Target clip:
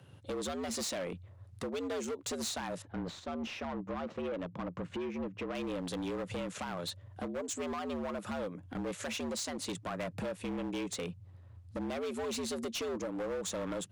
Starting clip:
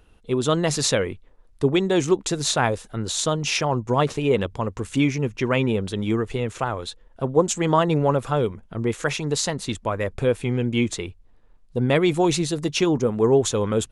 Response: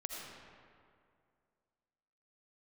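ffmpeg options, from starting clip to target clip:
-filter_complex "[0:a]alimiter=limit=-17dB:level=0:latency=1:release=461,acompressor=threshold=-29dB:ratio=4,afreqshift=82,volume=32dB,asoftclip=hard,volume=-32dB,asettb=1/sr,asplit=3[a][b][c];[a]atrim=end=2.824[d];[b]atrim=start=2.82:end=5.55,asetpts=PTS-STARTPTS,afade=t=in:d=0.004:c=qsin,afade=t=out:st=2.726:d=0.004:c=qsin,adynamicsmooth=sensitivity=2.5:basefreq=2k[e];[c]atrim=start=5.546[f];[d][e]acrossfade=d=0.004:c1=hsin:c2=qsin[g];[g][f]acrossfade=d=0.004:c1=qsin:c2=hsin,volume=-1.5dB"

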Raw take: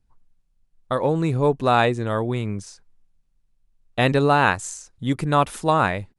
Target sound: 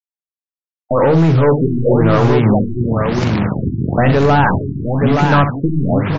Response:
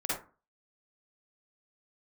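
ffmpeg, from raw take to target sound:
-filter_complex "[0:a]asettb=1/sr,asplit=3[a][b][c];[a]atrim=end=2.434[d];[b]atrim=start=2.43:end=4.15,asetpts=PTS-STARTPTS,afade=t=in:d=0.004:c=qsin,afade=t=out:st=1.716:d=0.004:c=qsin,aeval=exprs='val(0)+0.5*0.0794*sgn(val(0))':c=same[e];[c]atrim=start=4.146[f];[d][e]acrossfade=d=0.004:c1=hsin:c2=qsin[g];[g][f]acrossfade=d=0.004:c1=qsin:c2=hsin,highpass=f=94:w=0.5412,highpass=f=94:w=1.3066,bass=f=250:g=14,treble=f=4k:g=-3,agate=range=-33dB:threshold=-30dB:ratio=3:detection=peak,bandreject=f=50:t=h:w=6,bandreject=f=100:t=h:w=6,bandreject=f=150:t=h:w=6,bandreject=f=200:t=h:w=6,bandreject=f=250:t=h:w=6,bandreject=f=300:t=h:w=6,bandreject=f=350:t=h:w=6,bandreject=f=400:t=h:w=6,acompressor=threshold=-30dB:ratio=2.5,acrusher=bits=7:mix=0:aa=0.000001,asplit=2[h][i];[i]highpass=f=720:p=1,volume=37dB,asoftclip=type=tanh:threshold=-1dB[j];[h][j]amix=inputs=2:normalize=0,lowpass=f=1.4k:p=1,volume=-6dB,aecho=1:1:62|469|872:0.316|0.251|0.631,afftfilt=real='re*lt(b*sr/1024,380*pow(7500/380,0.5+0.5*sin(2*PI*1*pts/sr)))':imag='im*lt(b*sr/1024,380*pow(7500/380,0.5+0.5*sin(2*PI*1*pts/sr)))':win_size=1024:overlap=0.75,volume=-1dB"

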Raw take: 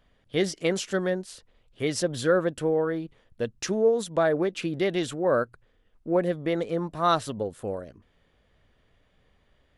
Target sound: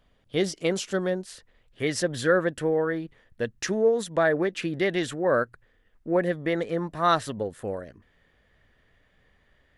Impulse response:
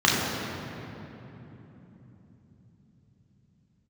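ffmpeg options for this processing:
-af "asetnsamples=n=441:p=0,asendcmd='1.26 equalizer g 8.5',equalizer=f=1.8k:w=3.3:g=-2.5"

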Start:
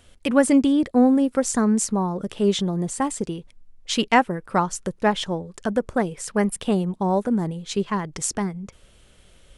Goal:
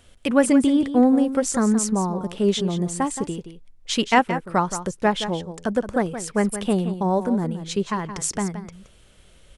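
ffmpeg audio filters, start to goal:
-af "aecho=1:1:172:0.282"

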